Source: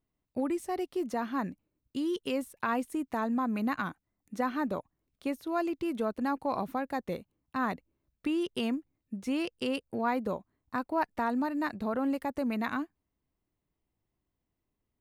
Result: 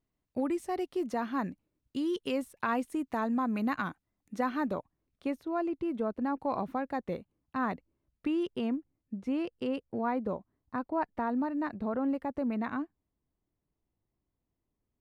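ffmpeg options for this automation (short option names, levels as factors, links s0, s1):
-af "asetnsamples=n=441:p=0,asendcmd='4.73 lowpass f 2600;5.43 lowpass f 1100;6.4 lowpass f 2200;8.55 lowpass f 1100',lowpass=f=6800:p=1"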